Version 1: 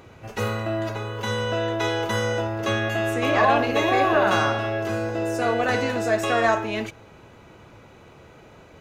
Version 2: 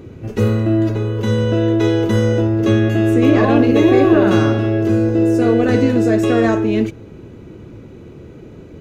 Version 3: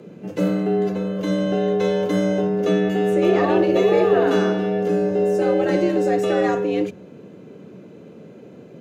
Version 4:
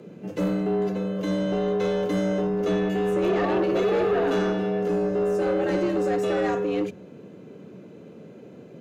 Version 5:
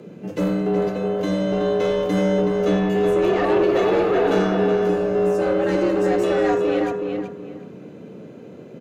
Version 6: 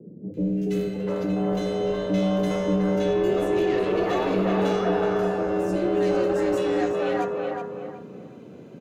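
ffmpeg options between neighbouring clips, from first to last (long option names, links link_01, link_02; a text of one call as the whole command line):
ffmpeg -i in.wav -af "lowshelf=frequency=520:width_type=q:width=1.5:gain=12.5" out.wav
ffmpeg -i in.wav -af "afreqshift=82,volume=-5dB" out.wav
ffmpeg -i in.wav -af "asoftclip=type=tanh:threshold=-15dB,volume=-2.5dB" out.wav
ffmpeg -i in.wav -filter_complex "[0:a]asplit=2[link_01][link_02];[link_02]adelay=372,lowpass=frequency=3300:poles=1,volume=-4dB,asplit=2[link_03][link_04];[link_04]adelay=372,lowpass=frequency=3300:poles=1,volume=0.27,asplit=2[link_05][link_06];[link_06]adelay=372,lowpass=frequency=3300:poles=1,volume=0.27,asplit=2[link_07][link_08];[link_08]adelay=372,lowpass=frequency=3300:poles=1,volume=0.27[link_09];[link_01][link_03][link_05][link_07][link_09]amix=inputs=5:normalize=0,volume=3.5dB" out.wav
ffmpeg -i in.wav -filter_complex "[0:a]acrossover=split=460|1800[link_01][link_02][link_03];[link_03]adelay=340[link_04];[link_02]adelay=700[link_05];[link_01][link_05][link_04]amix=inputs=3:normalize=0,volume=-2dB" out.wav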